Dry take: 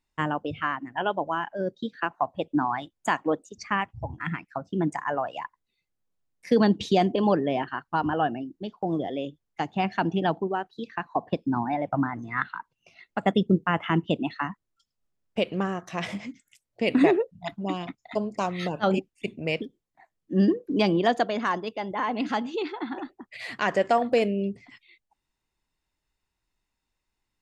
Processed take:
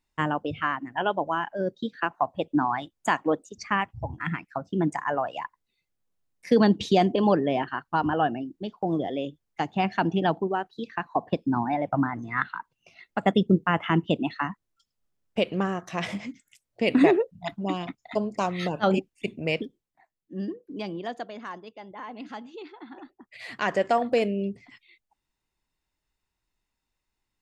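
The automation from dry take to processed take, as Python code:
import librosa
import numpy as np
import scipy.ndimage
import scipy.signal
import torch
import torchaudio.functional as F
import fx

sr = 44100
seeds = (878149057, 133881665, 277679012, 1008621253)

y = fx.gain(x, sr, db=fx.line((19.62, 1.0), (20.38, -11.5), (22.84, -11.5), (23.64, -1.0)))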